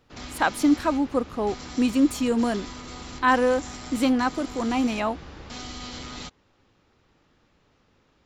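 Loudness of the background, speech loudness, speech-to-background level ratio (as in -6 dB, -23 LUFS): -38.5 LUFS, -24.5 LUFS, 14.0 dB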